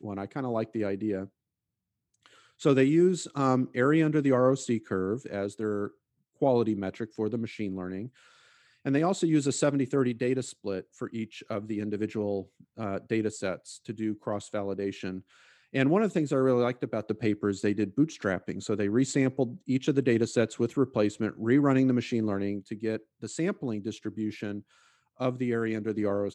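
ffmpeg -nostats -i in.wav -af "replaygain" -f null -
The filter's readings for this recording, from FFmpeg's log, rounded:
track_gain = +8.2 dB
track_peak = 0.198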